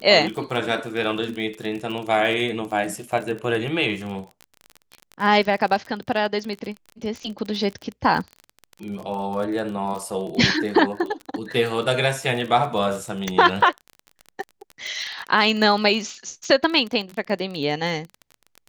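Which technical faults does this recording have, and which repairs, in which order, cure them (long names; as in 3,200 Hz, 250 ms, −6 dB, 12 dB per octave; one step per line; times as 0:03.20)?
surface crackle 28 per second −28 dBFS
0:13.28: click −10 dBFS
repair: click removal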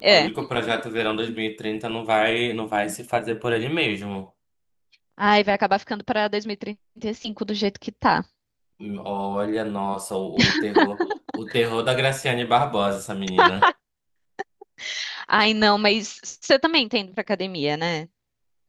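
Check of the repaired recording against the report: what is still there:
0:13.28: click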